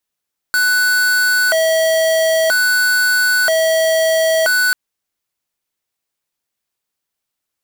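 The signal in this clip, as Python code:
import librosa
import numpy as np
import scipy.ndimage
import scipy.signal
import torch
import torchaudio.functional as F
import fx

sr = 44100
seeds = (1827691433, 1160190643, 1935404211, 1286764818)

y = fx.siren(sr, length_s=4.19, kind='hi-lo', low_hz=646.0, high_hz=1490.0, per_s=0.51, wave='square', level_db=-14.0)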